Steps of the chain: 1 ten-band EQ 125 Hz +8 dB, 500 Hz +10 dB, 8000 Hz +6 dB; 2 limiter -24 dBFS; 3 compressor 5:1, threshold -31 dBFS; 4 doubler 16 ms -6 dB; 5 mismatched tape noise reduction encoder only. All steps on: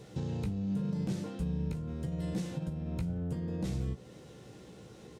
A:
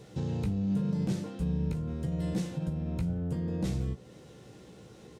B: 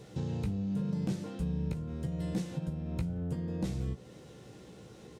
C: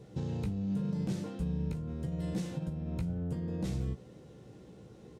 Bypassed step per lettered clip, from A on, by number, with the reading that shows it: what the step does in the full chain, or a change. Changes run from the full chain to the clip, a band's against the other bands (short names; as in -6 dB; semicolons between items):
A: 3, mean gain reduction 2.0 dB; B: 2, crest factor change +2.5 dB; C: 5, momentary loudness spread change +1 LU